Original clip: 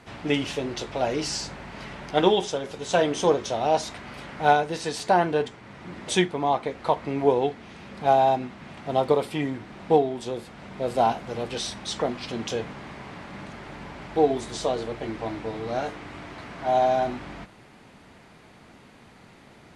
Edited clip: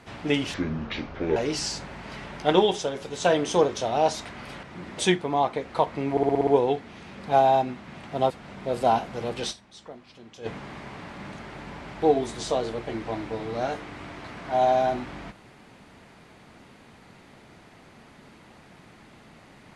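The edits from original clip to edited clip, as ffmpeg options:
-filter_complex "[0:a]asplit=13[a][b][c][d][e][f][g][h][i][j][k][l][m];[a]atrim=end=0.544[n];[b]atrim=start=0.54:end=1.05,asetpts=PTS-STARTPTS,asetrate=27342,aresample=44100[o];[c]atrim=start=1.046:end=4.322[p];[d]atrim=start=5.728:end=7.272[q];[e]atrim=start=7.208:end=7.272[r];[f]atrim=start=7.208:end=7.272[s];[g]atrim=start=7.208:end=7.272[t];[h]atrim=start=7.208:end=7.272[u];[i]atrim=start=7.208:end=7.272[v];[j]atrim=start=7.208:end=9.042[w];[k]atrim=start=10.438:end=11.81,asetpts=PTS-STARTPTS,afade=t=out:st=1.202:d=0.17:c=exp:silence=0.149624[x];[l]atrim=start=11.81:end=12.43,asetpts=PTS-STARTPTS,volume=-16.5dB[y];[m]atrim=start=12.43,asetpts=PTS-STARTPTS,afade=t=in:d=0.17:c=exp:silence=0.149624[z];[n][o]acrossfade=d=0.004:c1=hsin:c2=hsin[aa];[aa][p]acrossfade=d=0.004:c1=hsin:c2=hsin[ab];[ab][q]acrossfade=d=0.004:c1=hsin:c2=hsin[ac];[ac][r]acrossfade=d=0.004:c1=hsin:c2=hsin[ad];[ad][s]acrossfade=d=0.004:c1=hsin:c2=hsin[ae];[ae][t]acrossfade=d=0.004:c1=hsin:c2=hsin[af];[af][u]acrossfade=d=0.004:c1=hsin:c2=hsin[ag];[ag][v]acrossfade=d=0.004:c1=hsin:c2=hsin[ah];[ah][w]acrossfade=d=0.004:c1=hsin:c2=hsin[ai];[x][y][z]concat=n=3:v=0:a=1[aj];[ai][aj]acrossfade=d=0.004:c1=hsin:c2=hsin"

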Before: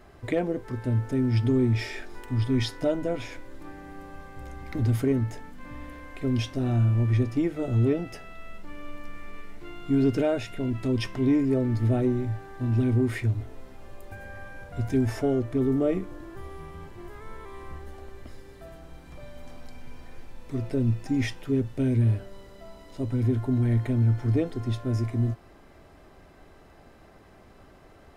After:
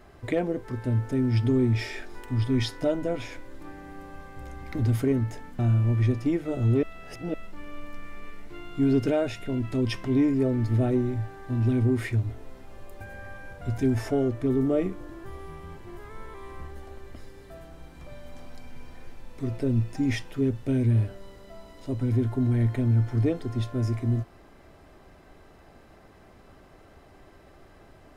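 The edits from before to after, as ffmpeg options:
-filter_complex "[0:a]asplit=4[a][b][c][d];[a]atrim=end=5.592[e];[b]atrim=start=6.698:end=7.942[f];[c]atrim=start=7.938:end=8.452,asetpts=PTS-STARTPTS,areverse[g];[d]atrim=start=8.448[h];[e][f]acrossfade=d=0.004:c1=hsin:c2=hsin[i];[i][g]acrossfade=d=0.004:c1=hsin:c2=hsin[j];[j][h]acrossfade=d=0.004:c1=hsin:c2=hsin"

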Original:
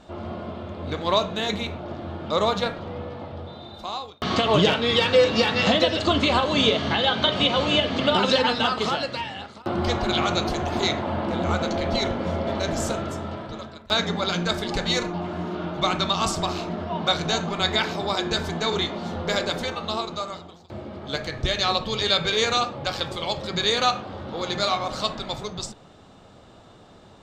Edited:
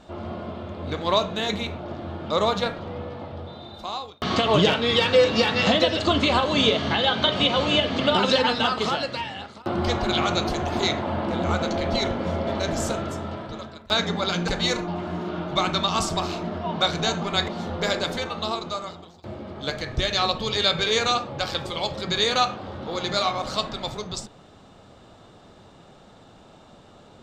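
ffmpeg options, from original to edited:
-filter_complex "[0:a]asplit=3[a][b][c];[a]atrim=end=14.482[d];[b]atrim=start=14.738:end=17.742[e];[c]atrim=start=18.938[f];[d][e]acrossfade=d=0.004:c1=hsin:c2=hsin[g];[g][f]acrossfade=d=0.004:c1=hsin:c2=hsin"

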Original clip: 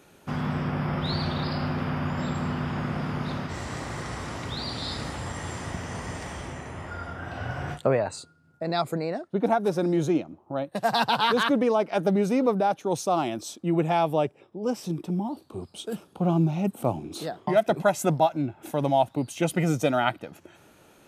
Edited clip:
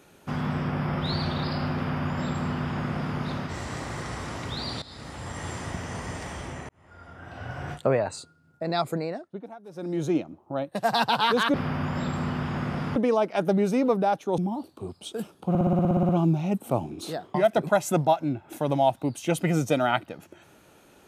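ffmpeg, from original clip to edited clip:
-filter_complex "[0:a]asplit=18[a][b][c][d][e][f][g][h][i][j][k][l][m][n][o][p][q][r];[a]atrim=end=4.82,asetpts=PTS-STARTPTS,afade=t=out:st=4.816:d=0.004:c=hsin:silence=0.125893[s];[b]atrim=start=4.82:end=6.69,asetpts=PTS-STARTPTS,afade=t=in:d=0.64:silence=0.125893,afade=t=out:st=1.866:d=0.004:c=hsin[t];[c]atrim=start=6.69:end=9.47,asetpts=PTS-STARTPTS,afade=t=in:d=1.25,afade=t=out:st=2.29:d=0.49:silence=0.0944061[u];[d]atrim=start=9.47:end=9.69,asetpts=PTS-STARTPTS,volume=-20.5dB[v];[e]atrim=start=9.69:end=11.542,asetpts=PTS-STARTPTS,afade=t=in:d=0.49:silence=0.0944061[w];[f]atrim=start=1.758:end=3.182[x];[g]atrim=start=11.538:end=12.962[y];[h]atrim=start=15.108:end=16.282[z];[i]atrim=start=16.218:end=16.282[aa];[j]atrim=start=16.218:end=16.282[ab];[k]atrim=start=16.218:end=16.282[ac];[l]atrim=start=16.218:end=16.282[ad];[m]atrim=start=16.218:end=16.282[ae];[n]atrim=start=16.218:end=16.282[af];[o]atrim=start=16.218:end=16.282[ag];[p]atrim=start=16.218:end=16.282[ah];[q]atrim=start=16.218:end=16.282[ai];[r]atrim=start=16.218[aj];[s][t][u][v][w]concat=n=5:v=0:a=1[ak];[ak][x]acrossfade=d=0.004:c1=hsin:c2=hsin[al];[al][y]acrossfade=d=0.004:c1=hsin:c2=hsin[am];[am][z]acrossfade=d=0.004:c1=hsin:c2=hsin[an];[an][aa]acrossfade=d=0.004:c1=hsin:c2=hsin[ao];[ao][ab]acrossfade=d=0.004:c1=hsin:c2=hsin[ap];[ap][ac]acrossfade=d=0.004:c1=hsin:c2=hsin[aq];[aq][ad]acrossfade=d=0.004:c1=hsin:c2=hsin[ar];[ar][ae]acrossfade=d=0.004:c1=hsin:c2=hsin[as];[as][af]acrossfade=d=0.004:c1=hsin:c2=hsin[at];[at][ag]acrossfade=d=0.004:c1=hsin:c2=hsin[au];[au][ah]acrossfade=d=0.004:c1=hsin:c2=hsin[av];[av][ai]acrossfade=d=0.004:c1=hsin:c2=hsin[aw];[aw][aj]acrossfade=d=0.004:c1=hsin:c2=hsin"

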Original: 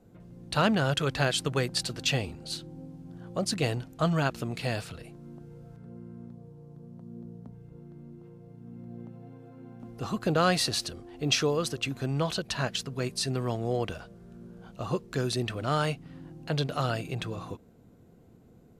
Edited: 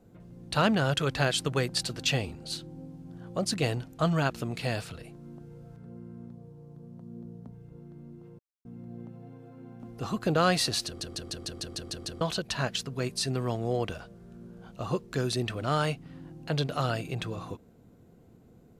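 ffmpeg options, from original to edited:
-filter_complex "[0:a]asplit=12[a][b][c][d][e][f][g][h][i][j][k][l];[a]atrim=end=8.39,asetpts=PTS-STARTPTS,afade=t=out:st=8.386:d=0.004:c=hsin[m];[b]atrim=start=8.39:end=8.65,asetpts=PTS-STARTPTS,volume=0[n];[c]atrim=start=8.65:end=11.012,asetpts=PTS-STARTPTS,afade=t=in:d=0.004:c=hsin[o];[d]atrim=start=10.858:end=11.012[p];[e]atrim=start=10.858:end=11.012[q];[f]atrim=start=10.858:end=11.012[r];[g]atrim=start=10.858:end=11.012[s];[h]atrim=start=10.858:end=11.012[t];[i]atrim=start=10.858:end=11.012[u];[j]atrim=start=10.858:end=11.012[v];[k]atrim=start=10.858:end=11.012[w];[l]atrim=start=12.208[x];[m][n][o]concat=n=3:v=0:a=1[y];[y][p]acrossfade=d=0.004:c1=hsin:c2=hsin[z];[z][q]acrossfade=d=0.004:c1=hsin:c2=hsin[aa];[aa][r]acrossfade=d=0.004:c1=hsin:c2=hsin[ab];[ab][s]acrossfade=d=0.004:c1=hsin:c2=hsin[ac];[ac][t]acrossfade=d=0.004:c1=hsin:c2=hsin[ad];[ad][u]acrossfade=d=0.004:c1=hsin:c2=hsin[ae];[ae][v]acrossfade=d=0.004:c1=hsin:c2=hsin[af];[af][w]acrossfade=d=0.004:c1=hsin:c2=hsin[ag];[ag][x]acrossfade=d=0.004:c1=hsin:c2=hsin"

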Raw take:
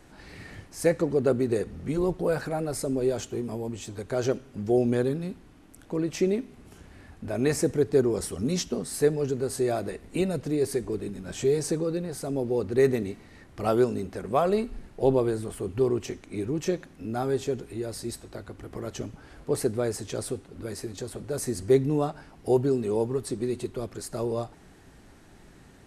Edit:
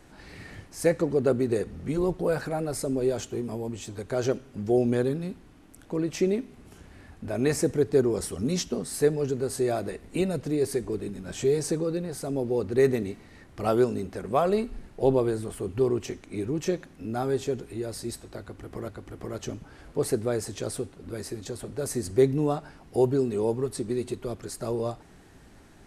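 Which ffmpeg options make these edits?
-filter_complex "[0:a]asplit=2[a][b];[a]atrim=end=18.882[c];[b]atrim=start=18.398[d];[c][d]acrossfade=d=0.004:c1=hsin:c2=hsin"

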